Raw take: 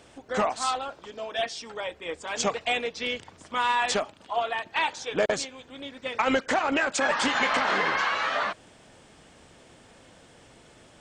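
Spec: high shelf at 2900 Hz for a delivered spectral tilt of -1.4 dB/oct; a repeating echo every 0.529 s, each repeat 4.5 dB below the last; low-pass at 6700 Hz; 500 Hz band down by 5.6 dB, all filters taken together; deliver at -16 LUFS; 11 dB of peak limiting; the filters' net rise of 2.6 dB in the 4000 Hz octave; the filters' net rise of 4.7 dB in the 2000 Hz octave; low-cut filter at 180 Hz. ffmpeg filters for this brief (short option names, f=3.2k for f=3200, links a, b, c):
-af "highpass=180,lowpass=6.7k,equalizer=f=500:t=o:g=-7.5,equalizer=f=2k:t=o:g=7,highshelf=f=2.9k:g=-4.5,equalizer=f=4k:t=o:g=4.5,alimiter=limit=-19.5dB:level=0:latency=1,aecho=1:1:529|1058|1587|2116|2645|3174|3703|4232|4761:0.596|0.357|0.214|0.129|0.0772|0.0463|0.0278|0.0167|0.01,volume=12.5dB"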